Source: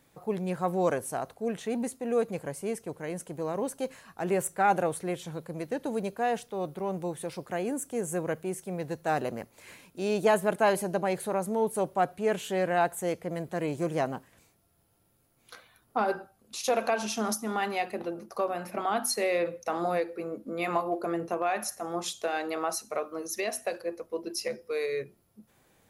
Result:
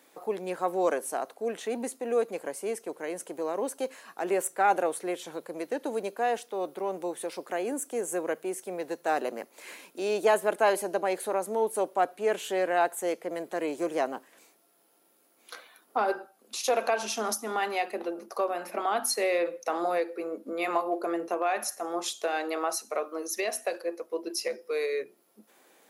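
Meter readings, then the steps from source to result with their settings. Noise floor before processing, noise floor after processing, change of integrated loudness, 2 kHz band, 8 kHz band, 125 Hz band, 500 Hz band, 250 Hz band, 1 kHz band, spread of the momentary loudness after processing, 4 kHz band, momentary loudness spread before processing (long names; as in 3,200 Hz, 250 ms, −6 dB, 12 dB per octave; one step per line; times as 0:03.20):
−67 dBFS, −65 dBFS, +0.5 dB, +1.0 dB, +1.5 dB, below −10 dB, +1.0 dB, −2.5 dB, +1.0 dB, 10 LU, +1.5 dB, 10 LU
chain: high-pass filter 280 Hz 24 dB per octave
in parallel at −1 dB: downward compressor, threshold −45 dBFS, peak gain reduction 23.5 dB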